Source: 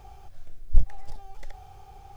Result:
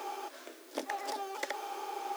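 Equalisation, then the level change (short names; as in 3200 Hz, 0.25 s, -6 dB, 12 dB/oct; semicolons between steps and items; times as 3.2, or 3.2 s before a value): rippled Chebyshev high-pass 260 Hz, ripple 3 dB; Butterworth band-stop 750 Hz, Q 7.8; +16.5 dB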